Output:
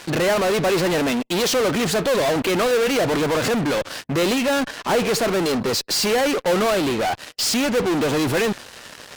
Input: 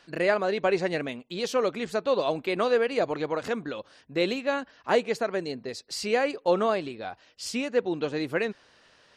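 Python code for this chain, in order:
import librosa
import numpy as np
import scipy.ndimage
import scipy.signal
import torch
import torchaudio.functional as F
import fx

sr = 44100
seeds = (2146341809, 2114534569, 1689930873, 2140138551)

p1 = scipy.signal.sosfilt(scipy.signal.butter(4, 57.0, 'highpass', fs=sr, output='sos'), x)
p2 = fx.fuzz(p1, sr, gain_db=49.0, gate_db=-57.0)
p3 = p1 + (p2 * 10.0 ** (-3.0 / 20.0))
y = p3 * 10.0 ** (-4.5 / 20.0)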